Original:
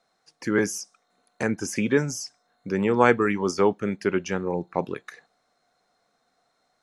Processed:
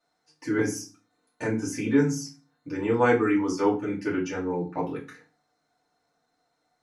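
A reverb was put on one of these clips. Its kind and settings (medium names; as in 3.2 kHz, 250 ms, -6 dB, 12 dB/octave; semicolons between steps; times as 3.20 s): FDN reverb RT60 0.34 s, low-frequency decay 1.55×, high-frequency decay 0.8×, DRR -7 dB; trim -11.5 dB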